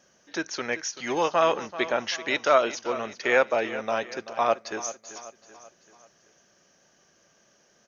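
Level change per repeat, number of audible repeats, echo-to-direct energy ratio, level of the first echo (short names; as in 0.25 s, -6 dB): -6.5 dB, 4, -13.5 dB, -14.5 dB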